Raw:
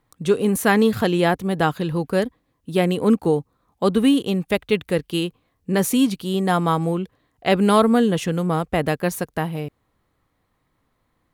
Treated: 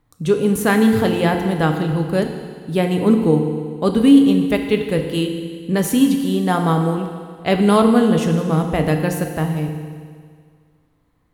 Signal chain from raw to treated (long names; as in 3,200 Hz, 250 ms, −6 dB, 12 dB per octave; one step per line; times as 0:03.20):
low-shelf EQ 230 Hz +7.5 dB
feedback delay network reverb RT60 1.9 s, low-frequency decay 0.95×, high-frequency decay 1×, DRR 4 dB
level −1 dB